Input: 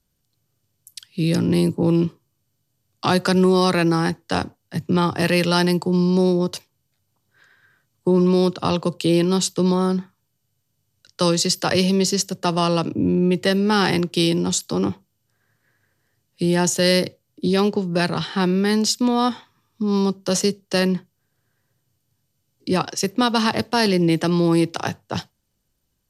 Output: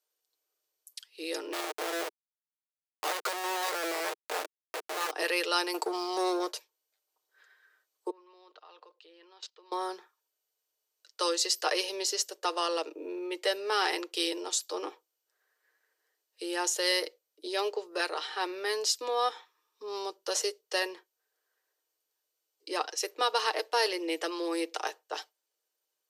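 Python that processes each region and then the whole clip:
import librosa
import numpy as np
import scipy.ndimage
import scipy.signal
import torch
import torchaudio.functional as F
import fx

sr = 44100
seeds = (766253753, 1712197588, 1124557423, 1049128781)

y = fx.chain(x, sr, fx.peak_eq(hz=420.0, db=-5.5, octaves=0.26),
    fx.schmitt(flips_db=-26.0), at=(1.53, 5.11))
y = fx.chain(y, sr, fx.high_shelf(hz=9100.0, db=5.5),
    fx.leveller(passes=2), at=(5.74, 6.52))
y = fx.chain(y, sr, fx.highpass(hz=990.0, slope=6),
    fx.level_steps(step_db=22),
    fx.air_absorb(metres=240.0), at=(8.1, 9.72))
y = scipy.signal.sosfilt(scipy.signal.butter(8, 380.0, 'highpass', fs=sr, output='sos'), y)
y = y + 0.45 * np.pad(y, (int(6.5 * sr / 1000.0), 0))[:len(y)]
y = F.gain(torch.from_numpy(y), -8.0).numpy()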